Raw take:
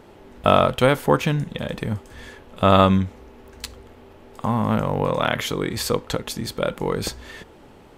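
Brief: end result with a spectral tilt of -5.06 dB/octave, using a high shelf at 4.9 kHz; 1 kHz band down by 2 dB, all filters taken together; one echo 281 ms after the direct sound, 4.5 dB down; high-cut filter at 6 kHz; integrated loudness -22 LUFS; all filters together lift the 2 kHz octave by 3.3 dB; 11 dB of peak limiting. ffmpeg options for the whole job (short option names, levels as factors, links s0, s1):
-af "lowpass=6000,equalizer=f=1000:t=o:g=-5,equalizer=f=2000:t=o:g=5,highshelf=f=4900:g=6.5,alimiter=limit=0.224:level=0:latency=1,aecho=1:1:281:0.596,volume=1.5"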